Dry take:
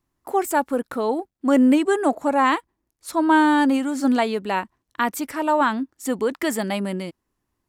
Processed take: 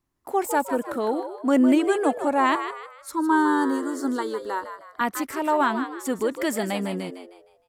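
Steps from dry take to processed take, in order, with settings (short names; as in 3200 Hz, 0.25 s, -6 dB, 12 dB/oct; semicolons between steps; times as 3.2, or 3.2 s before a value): 2.55–5.01 fixed phaser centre 670 Hz, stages 6; frequency-shifting echo 0.155 s, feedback 37%, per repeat +78 Hz, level -9.5 dB; gain -2.5 dB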